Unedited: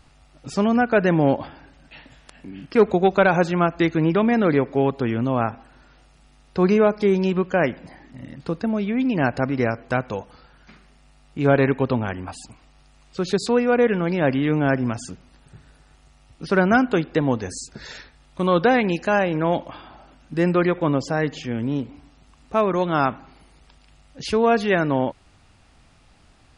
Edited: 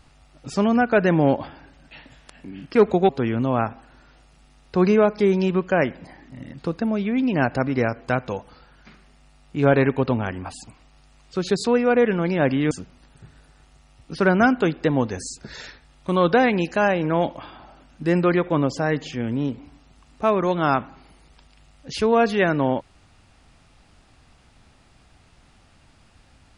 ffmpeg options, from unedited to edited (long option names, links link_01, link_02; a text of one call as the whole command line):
ffmpeg -i in.wav -filter_complex "[0:a]asplit=3[link_01][link_02][link_03];[link_01]atrim=end=3.092[link_04];[link_02]atrim=start=4.908:end=14.532[link_05];[link_03]atrim=start=15.018[link_06];[link_04][link_05]acrossfade=duration=0.004:curve1=hsin:curve2=hsin[link_07];[link_07][link_06]acrossfade=duration=0.004:curve1=hsin:curve2=hsin" out.wav